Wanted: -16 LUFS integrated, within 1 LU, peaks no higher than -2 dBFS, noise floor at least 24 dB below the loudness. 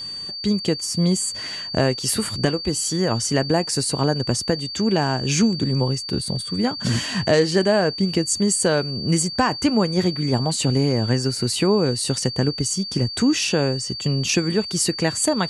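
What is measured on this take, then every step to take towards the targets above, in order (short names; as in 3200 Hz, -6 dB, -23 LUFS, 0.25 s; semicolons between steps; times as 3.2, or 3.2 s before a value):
steady tone 4600 Hz; tone level -29 dBFS; loudness -21.0 LUFS; peak -5.5 dBFS; loudness target -16.0 LUFS
-> notch 4600 Hz, Q 30; gain +5 dB; limiter -2 dBFS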